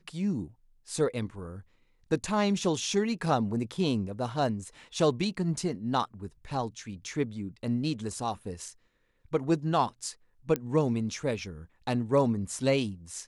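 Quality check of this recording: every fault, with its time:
10.56 s: pop -15 dBFS

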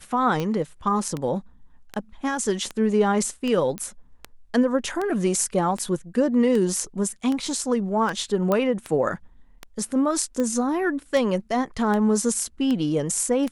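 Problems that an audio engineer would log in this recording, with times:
tick 78 rpm -15 dBFS
3.78 s: pop -16 dBFS
8.52 s: pop -11 dBFS

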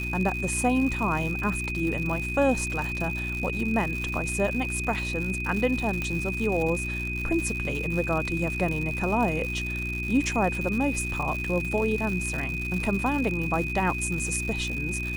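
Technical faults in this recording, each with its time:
crackle 160 per s -30 dBFS
hum 60 Hz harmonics 6 -33 dBFS
whine 2.5 kHz -31 dBFS
6.02 s: pop -16 dBFS

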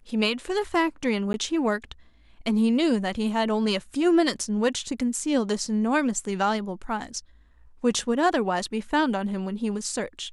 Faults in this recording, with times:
1.33–1.34 s: dropout

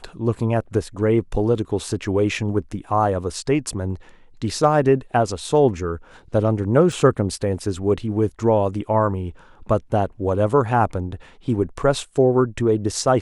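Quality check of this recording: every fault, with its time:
6.92 s: dropout 2.6 ms

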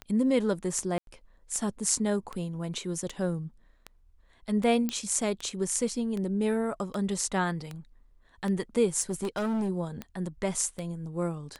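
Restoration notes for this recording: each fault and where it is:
tick 78 rpm -22 dBFS
0.98–1.07 s: dropout 92 ms
4.89 s: pop -15 dBFS
9.01–9.70 s: clipped -26 dBFS

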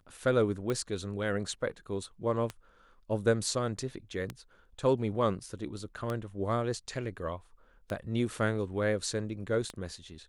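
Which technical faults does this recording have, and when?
tick 33 1/3 rpm -20 dBFS

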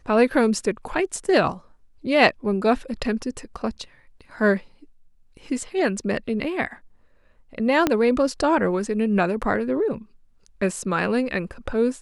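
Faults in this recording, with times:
7.87 s: pop -5 dBFS

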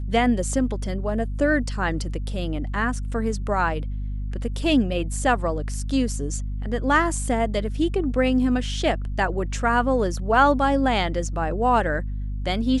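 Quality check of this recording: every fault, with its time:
hum 50 Hz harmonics 5 -28 dBFS

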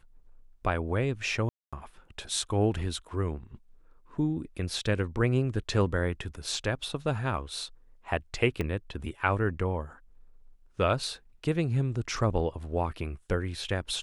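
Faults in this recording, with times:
1.49–1.73 s: dropout 236 ms
8.61 s: pop -18 dBFS

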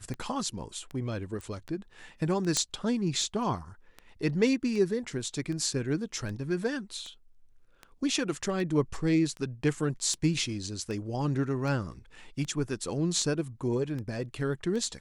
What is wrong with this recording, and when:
tick 78 rpm -26 dBFS
1.41 s: pop
2.57 s: pop -12 dBFS

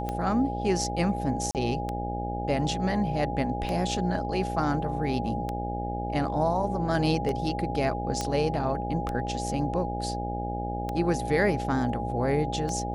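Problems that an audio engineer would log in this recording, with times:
buzz 60 Hz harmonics 14 -33 dBFS
tick 33 1/3 rpm -18 dBFS
whine 820 Hz -33 dBFS
1.51–1.55 s: dropout 38 ms
8.21 s: pop -15 dBFS

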